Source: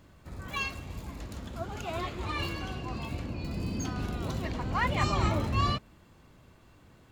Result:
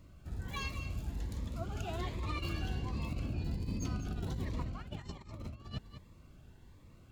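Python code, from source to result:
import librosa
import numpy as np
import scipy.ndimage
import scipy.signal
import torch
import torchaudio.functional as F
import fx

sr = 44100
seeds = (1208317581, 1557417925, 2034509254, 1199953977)

p1 = fx.low_shelf(x, sr, hz=110.0, db=9.5)
p2 = fx.over_compress(p1, sr, threshold_db=-30.0, ratio=-0.5)
p3 = p2 + fx.echo_single(p2, sr, ms=199, db=-10.5, dry=0)
p4 = fx.notch_cascade(p3, sr, direction='rising', hz=1.3)
y = p4 * librosa.db_to_amplitude(-7.0)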